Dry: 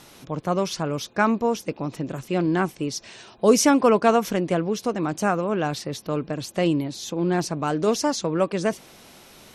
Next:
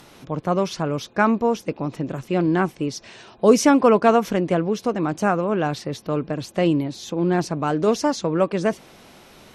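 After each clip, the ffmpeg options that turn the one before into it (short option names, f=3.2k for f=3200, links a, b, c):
-filter_complex "[0:a]highshelf=f=4.4k:g=-8.5,acrossover=split=1800[a][b];[b]acompressor=mode=upward:threshold=-57dB:ratio=2.5[c];[a][c]amix=inputs=2:normalize=0,volume=2.5dB"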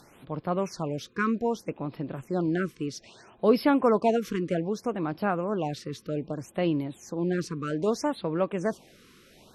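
-af "afftfilt=real='re*(1-between(b*sr/1024,700*pow(7700/700,0.5+0.5*sin(2*PI*0.63*pts/sr))/1.41,700*pow(7700/700,0.5+0.5*sin(2*PI*0.63*pts/sr))*1.41))':imag='im*(1-between(b*sr/1024,700*pow(7700/700,0.5+0.5*sin(2*PI*0.63*pts/sr))/1.41,700*pow(7700/700,0.5+0.5*sin(2*PI*0.63*pts/sr))*1.41))':win_size=1024:overlap=0.75,volume=-7dB"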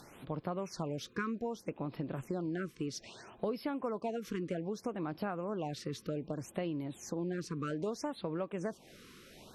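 -af "acompressor=threshold=-34dB:ratio=6"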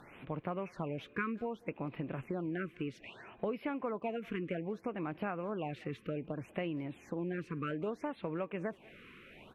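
-filter_complex "[0:a]highshelf=f=3.6k:t=q:w=3:g=-13,asplit=2[a][b];[b]adelay=190,highpass=300,lowpass=3.4k,asoftclip=type=hard:threshold=-30dB,volume=-23dB[c];[a][c]amix=inputs=2:normalize=0,volume=-1dB"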